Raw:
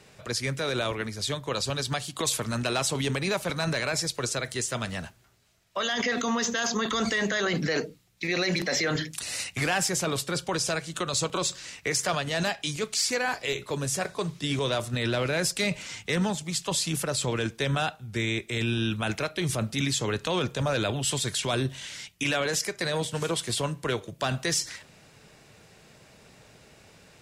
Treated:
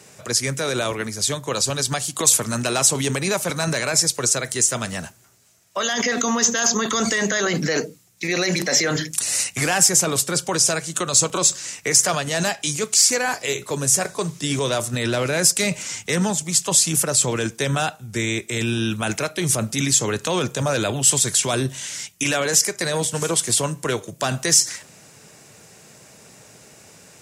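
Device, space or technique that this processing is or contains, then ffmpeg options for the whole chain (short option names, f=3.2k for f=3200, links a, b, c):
budget condenser microphone: -af "highpass=100,highshelf=f=5.1k:t=q:w=1.5:g=7,volume=5.5dB"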